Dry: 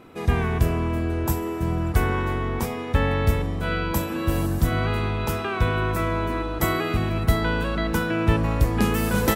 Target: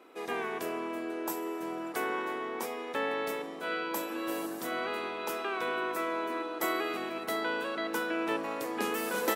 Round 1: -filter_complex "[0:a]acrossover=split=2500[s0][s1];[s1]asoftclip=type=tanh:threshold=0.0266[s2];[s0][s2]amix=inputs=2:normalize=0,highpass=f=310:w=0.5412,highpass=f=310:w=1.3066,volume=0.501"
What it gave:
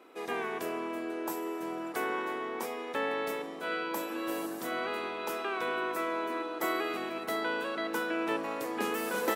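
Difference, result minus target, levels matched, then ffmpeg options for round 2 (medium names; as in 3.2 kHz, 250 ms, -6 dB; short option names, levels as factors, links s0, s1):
saturation: distortion +10 dB
-filter_complex "[0:a]acrossover=split=2500[s0][s1];[s1]asoftclip=type=tanh:threshold=0.0794[s2];[s0][s2]amix=inputs=2:normalize=0,highpass=f=310:w=0.5412,highpass=f=310:w=1.3066,volume=0.501"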